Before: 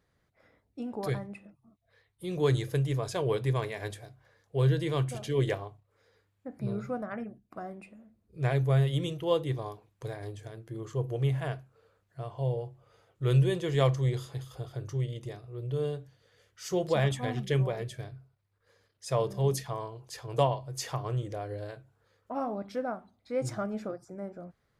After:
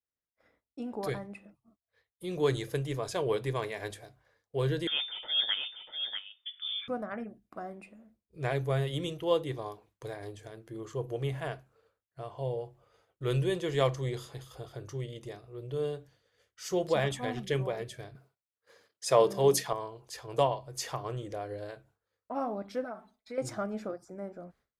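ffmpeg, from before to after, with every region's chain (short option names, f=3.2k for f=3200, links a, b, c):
-filter_complex "[0:a]asettb=1/sr,asplit=3[a][b][c];[a]atrim=end=4.874[d];[b]atrim=start=4.87:end=6.88,asetpts=PTS-STARTPTS,afade=t=in:d=0.004:c=qsin,afade=t=out:st=2.006:d=0.004:c=qsin,highpass=210,aecho=1:1:642:0.447,atrim=end_sample=88641,lowpass=f=3.1k:t=q:w=0.5098,lowpass=f=3.1k:t=q:w=0.6013,lowpass=f=3.1k:t=q:w=0.9,lowpass=f=3.1k:t=q:w=2.563,afreqshift=-3700[e];[c]atrim=start=6.876[f];[d][e]acrossfade=d=0.004:c1=hsin:c2=qsin[g];[g][f]acrossfade=d=0.004:c1=qsin:c2=hsin,asettb=1/sr,asplit=3[h][i][j];[h]atrim=end=18.154[k];[i]atrim=start=18.15:end=19.73,asetpts=PTS-STARTPTS,afade=t=in:d=0.004:c=qsin,afade=t=out:st=1.576:d=0.004:c=qsin,highpass=180,acontrast=76[l];[j]atrim=start=19.726[m];[k][l]acrossfade=d=0.004:c1=hsin:c2=qsin[n];[n][m]acrossfade=d=0.004:c1=qsin:c2=hsin,asettb=1/sr,asplit=3[o][p][q];[o]atrim=end=22.844[r];[p]atrim=start=22.84:end=23.38,asetpts=PTS-STARTPTS,afade=t=in:d=0.004:c=qsin,afade=t=out:st=0.536:d=0.004:c=qsin,lowshelf=f=450:g=-7.5,aecho=1:1:4.6:0.91,atrim=end_sample=23814,acompressor=threshold=-38dB:ratio=2.5:attack=3.2:release=140:knee=1:detection=peak[s];[q]atrim=start=23.376[t];[r][s]acrossfade=d=0.004:c1=hsin:c2=qsin[u];[u][t]acrossfade=d=0.004:c1=qsin:c2=hsin,equalizer=f=120:t=o:w=0.94:g=-8,agate=range=-33dB:threshold=-59dB:ratio=3:detection=peak"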